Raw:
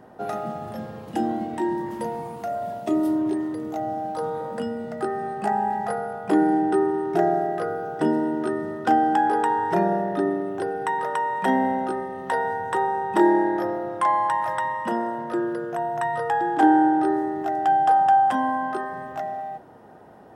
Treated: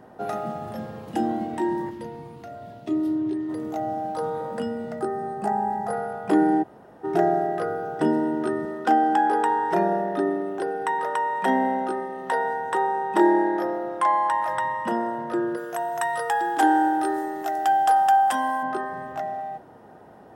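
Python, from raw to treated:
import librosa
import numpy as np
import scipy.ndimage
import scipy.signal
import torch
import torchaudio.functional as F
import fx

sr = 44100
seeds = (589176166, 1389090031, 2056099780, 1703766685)

y = fx.curve_eq(x, sr, hz=(140.0, 200.0, 290.0, 700.0, 1500.0, 4000.0, 8200.0), db=(0, -8, -1, -12, -7, -3, -12), at=(1.89, 3.48), fade=0.02)
y = fx.peak_eq(y, sr, hz=2600.0, db=-9.0, octaves=1.6, at=(4.99, 5.93))
y = fx.highpass(y, sr, hz=210.0, slope=12, at=(8.65, 14.51))
y = fx.riaa(y, sr, side='recording', at=(15.56, 18.62), fade=0.02)
y = fx.edit(y, sr, fx.room_tone_fill(start_s=6.63, length_s=0.41, crossfade_s=0.02), tone=tone)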